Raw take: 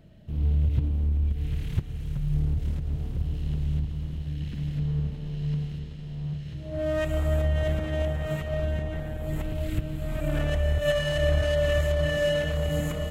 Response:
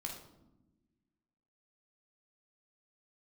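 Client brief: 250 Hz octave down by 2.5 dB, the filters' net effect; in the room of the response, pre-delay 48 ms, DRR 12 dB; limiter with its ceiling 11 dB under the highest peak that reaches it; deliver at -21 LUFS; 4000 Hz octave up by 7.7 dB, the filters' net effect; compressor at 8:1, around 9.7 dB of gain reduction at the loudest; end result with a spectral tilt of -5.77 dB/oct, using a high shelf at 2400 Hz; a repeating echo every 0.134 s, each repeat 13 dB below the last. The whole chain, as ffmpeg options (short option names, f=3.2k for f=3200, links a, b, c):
-filter_complex "[0:a]equalizer=f=250:t=o:g=-5.5,highshelf=f=2.4k:g=7,equalizer=f=4k:t=o:g=5.5,acompressor=threshold=-29dB:ratio=8,alimiter=level_in=7.5dB:limit=-24dB:level=0:latency=1,volume=-7.5dB,aecho=1:1:134|268|402:0.224|0.0493|0.0108,asplit=2[a][b];[1:a]atrim=start_sample=2205,adelay=48[c];[b][c]afir=irnorm=-1:irlink=0,volume=-11dB[d];[a][d]amix=inputs=2:normalize=0,volume=18.5dB"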